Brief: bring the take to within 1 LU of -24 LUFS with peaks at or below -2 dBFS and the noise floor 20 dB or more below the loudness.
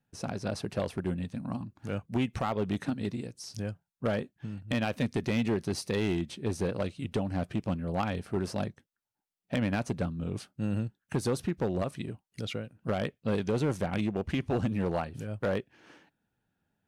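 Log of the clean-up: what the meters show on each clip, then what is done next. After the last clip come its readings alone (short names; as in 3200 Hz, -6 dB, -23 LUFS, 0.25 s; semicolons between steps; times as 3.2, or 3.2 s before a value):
clipped 1.3%; flat tops at -22.5 dBFS; loudness -33.0 LUFS; peak -22.5 dBFS; loudness target -24.0 LUFS
-> clip repair -22.5 dBFS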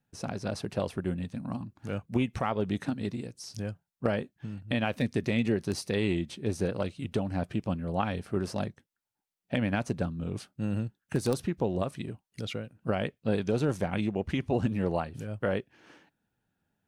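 clipped 0.0%; loudness -32.0 LUFS; peak -13.5 dBFS; loudness target -24.0 LUFS
-> gain +8 dB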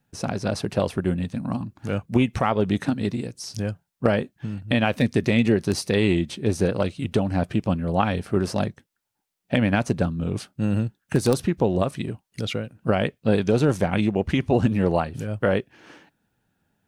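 loudness -24.0 LUFS; peak -5.5 dBFS; noise floor -79 dBFS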